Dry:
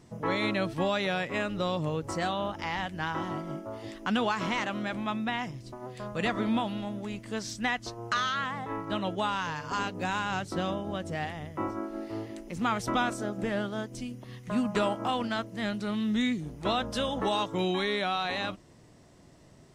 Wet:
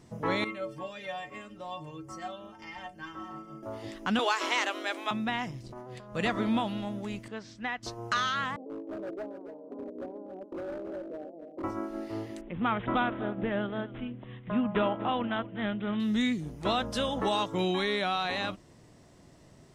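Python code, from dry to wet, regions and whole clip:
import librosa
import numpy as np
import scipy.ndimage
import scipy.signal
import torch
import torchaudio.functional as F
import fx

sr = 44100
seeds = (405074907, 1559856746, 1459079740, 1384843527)

y = fx.chain(x, sr, fx.notch(hz=3900.0, q=12.0),
    fx.stiff_resonator(f0_hz=66.0, decay_s=0.5, stiffness=0.03), at=(0.44, 3.63))
y = fx.chain(y, sr, fx.steep_highpass(hz=270.0, slope=96),
    fx.high_shelf(hz=2500.0, db=8.0), at=(4.19, 5.11))
y = fx.chain(y, sr, fx.high_shelf(hz=6200.0, db=-6.0),
    fx.over_compress(threshold_db=-44.0, ratio=-1.0),
    fx.transformer_sat(knee_hz=230.0), at=(5.63, 6.15))
y = fx.chain(y, sr, fx.bandpass_q(hz=2400.0, q=0.62),
    fx.tilt_eq(slope=-4.5), at=(7.28, 7.83))
y = fx.chain(y, sr, fx.ellip_bandpass(low_hz=250.0, high_hz=610.0, order=3, stop_db=60),
    fx.clip_hard(threshold_db=-34.5),
    fx.echo_single(ms=280, db=-10.0), at=(8.56, 11.64))
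y = fx.chain(y, sr, fx.high_shelf(hz=5200.0, db=-9.5),
    fx.echo_single(ms=246, db=-17.5),
    fx.resample_bad(factor=6, down='none', up='filtered'), at=(12.41, 16.0))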